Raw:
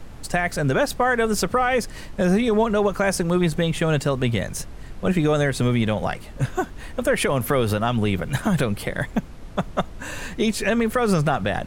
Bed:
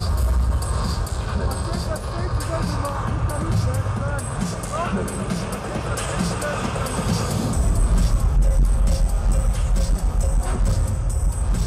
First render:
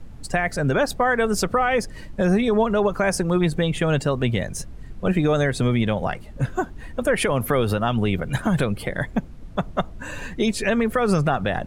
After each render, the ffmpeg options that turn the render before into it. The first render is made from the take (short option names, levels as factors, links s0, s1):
-af "afftdn=nr=9:nf=-38"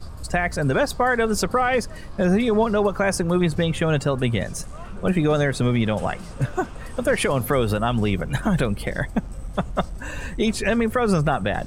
-filter_complex "[1:a]volume=0.15[s0];[0:a][s0]amix=inputs=2:normalize=0"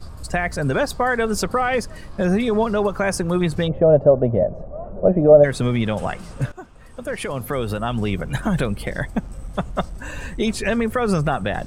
-filter_complex "[0:a]asplit=3[s0][s1][s2];[s0]afade=t=out:st=3.67:d=0.02[s3];[s1]lowpass=f=610:t=q:w=6,afade=t=in:st=3.67:d=0.02,afade=t=out:st=5.43:d=0.02[s4];[s2]afade=t=in:st=5.43:d=0.02[s5];[s3][s4][s5]amix=inputs=3:normalize=0,asplit=2[s6][s7];[s6]atrim=end=6.52,asetpts=PTS-STARTPTS,afade=t=out:st=6.516:d=0.004:c=hsin:silence=0.16788[s8];[s7]atrim=start=6.52,asetpts=PTS-STARTPTS,afade=t=in:d=1.78:silence=0.16788[s9];[s8][s9]concat=n=2:v=0:a=1"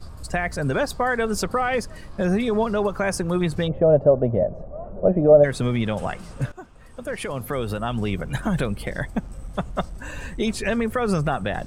-af "volume=0.75"